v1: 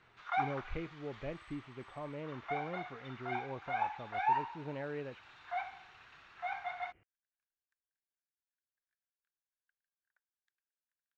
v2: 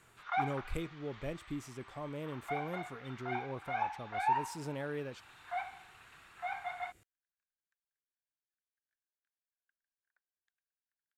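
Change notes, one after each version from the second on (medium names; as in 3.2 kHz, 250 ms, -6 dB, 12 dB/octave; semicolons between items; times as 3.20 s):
speech: remove rippled Chebyshev low-pass 3 kHz, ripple 3 dB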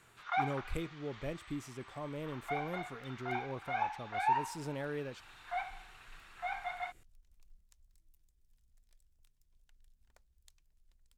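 first sound: add treble shelf 4.2 kHz +6 dB; second sound: remove band-pass filter 1.6 kHz, Q 9.8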